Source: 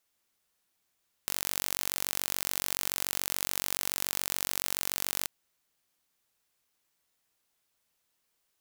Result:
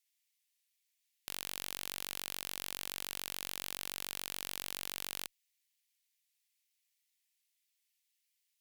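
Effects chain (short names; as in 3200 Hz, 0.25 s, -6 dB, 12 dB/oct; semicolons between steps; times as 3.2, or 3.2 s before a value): steep high-pass 1900 Hz 48 dB/oct; one-sided clip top -31 dBFS, bottom -11.5 dBFS; gain -3.5 dB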